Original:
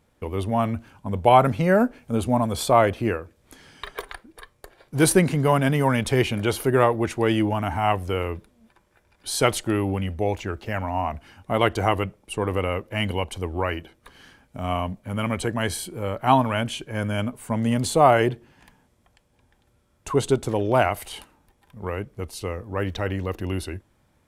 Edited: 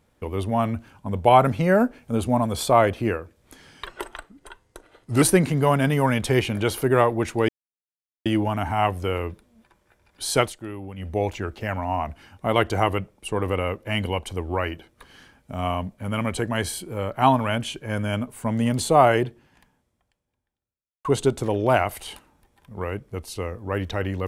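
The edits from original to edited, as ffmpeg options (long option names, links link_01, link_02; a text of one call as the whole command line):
ffmpeg -i in.wav -filter_complex "[0:a]asplit=7[link_01][link_02][link_03][link_04][link_05][link_06][link_07];[link_01]atrim=end=3.864[link_08];[link_02]atrim=start=3.86:end=5.04,asetpts=PTS-STARTPTS,asetrate=38367,aresample=44100[link_09];[link_03]atrim=start=5.036:end=7.31,asetpts=PTS-STARTPTS,afade=type=out:start_time=2.27:duration=0.004:curve=hsin,apad=pad_dur=0.77[link_10];[link_04]atrim=start=7.31:end=9.58,asetpts=PTS-STARTPTS,afade=type=in:duration=0.004:curve=hsin,afade=type=out:start_time=2.14:duration=0.13:silence=0.266073[link_11];[link_05]atrim=start=9.58:end=10.02,asetpts=PTS-STARTPTS,volume=-11.5dB[link_12];[link_06]atrim=start=10.02:end=20.1,asetpts=PTS-STARTPTS,afade=type=in:duration=0.13:silence=0.266073,afade=type=out:start_time=8.13:duration=1.95:curve=qua[link_13];[link_07]atrim=start=20.1,asetpts=PTS-STARTPTS,afade=type=in:duration=0.004:curve=hsin[link_14];[link_08][link_09]acrossfade=duration=0.004:curve1=hsin:curve2=hsin[link_15];[link_10][link_11][link_12][link_13][link_14]concat=n=5:v=0:a=1[link_16];[link_15][link_16]acrossfade=duration=0.004:curve1=hsin:curve2=hsin" out.wav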